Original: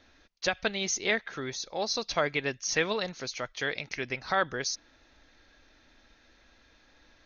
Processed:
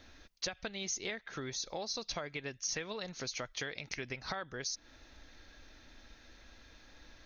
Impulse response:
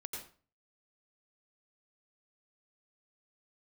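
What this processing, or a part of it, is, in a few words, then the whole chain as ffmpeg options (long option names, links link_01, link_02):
ASMR close-microphone chain: -af "lowshelf=frequency=170:gain=6,acompressor=threshold=-38dB:ratio=10,highshelf=frequency=6200:gain=7.5,volume=1dB"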